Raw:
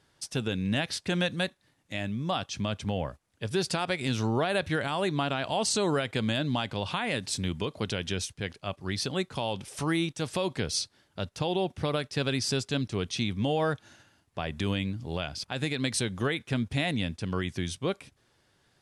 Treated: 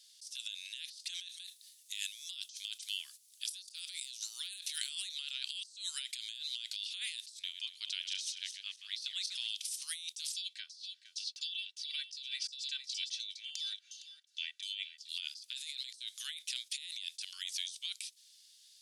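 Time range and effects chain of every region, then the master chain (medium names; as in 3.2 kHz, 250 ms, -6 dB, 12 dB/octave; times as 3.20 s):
1.44–4.95 s: treble shelf 7.1 kHz +10.5 dB + hard clipper -18 dBFS
7.39–9.50 s: backward echo that repeats 125 ms, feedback 47%, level -8.5 dB + high-pass 180 Hz 6 dB/octave + tilt EQ -4 dB/octave
10.34–15.09 s: LFO band-pass saw down 2.8 Hz 870–6200 Hz + comb 2.6 ms, depth 69% + delay 461 ms -13.5 dB
whole clip: inverse Chebyshev high-pass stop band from 650 Hz, stop band 80 dB; treble shelf 5.4 kHz -3 dB; compressor with a negative ratio -52 dBFS, ratio -1; trim +8.5 dB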